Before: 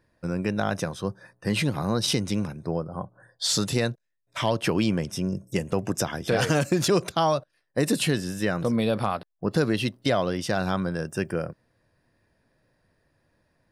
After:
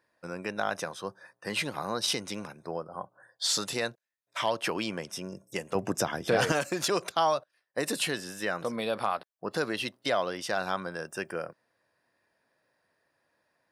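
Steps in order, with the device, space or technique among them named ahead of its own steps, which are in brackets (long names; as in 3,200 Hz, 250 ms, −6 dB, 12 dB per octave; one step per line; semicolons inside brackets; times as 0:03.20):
filter by subtraction (in parallel: low-pass filter 940 Hz 12 dB per octave + polarity inversion)
0:05.75–0:06.52: on the sum: low-shelf EQ 380 Hz +11.5 dB
level −3 dB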